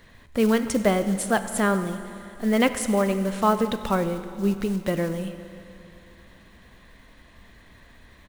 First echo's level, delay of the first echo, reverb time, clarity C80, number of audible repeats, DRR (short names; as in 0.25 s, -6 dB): -21.0 dB, 96 ms, 2.9 s, 11.5 dB, 1, 9.5 dB